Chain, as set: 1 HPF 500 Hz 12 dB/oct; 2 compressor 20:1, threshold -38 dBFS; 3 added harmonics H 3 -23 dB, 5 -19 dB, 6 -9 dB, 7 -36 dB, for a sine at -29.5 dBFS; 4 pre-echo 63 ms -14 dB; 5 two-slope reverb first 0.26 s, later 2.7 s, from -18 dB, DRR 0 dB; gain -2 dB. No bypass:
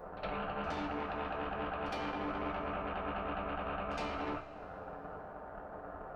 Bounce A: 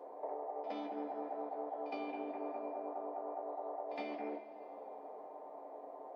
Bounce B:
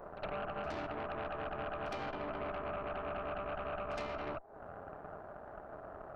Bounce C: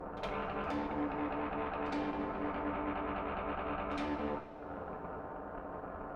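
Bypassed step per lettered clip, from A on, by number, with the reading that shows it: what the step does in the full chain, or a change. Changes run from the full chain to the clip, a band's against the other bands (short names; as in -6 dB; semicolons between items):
3, loudness change -4.0 LU; 5, crest factor change -1.5 dB; 1, 250 Hz band +4.0 dB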